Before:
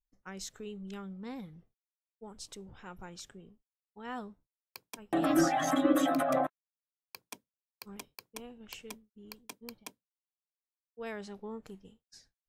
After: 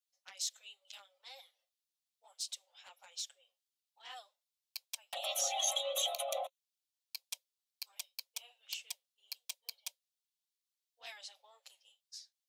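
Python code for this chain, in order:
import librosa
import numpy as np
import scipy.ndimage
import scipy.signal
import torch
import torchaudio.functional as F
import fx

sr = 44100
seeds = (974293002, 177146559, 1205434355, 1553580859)

y = scipy.signal.sosfilt(scipy.signal.cheby1(6, 3, 530.0, 'highpass', fs=sr, output='sos'), x)
y = fx.env_flanger(y, sr, rest_ms=10.8, full_db=-33.0)
y = fx.high_shelf_res(y, sr, hz=2400.0, db=14.0, q=1.5)
y = y * librosa.db_to_amplitude(-4.5)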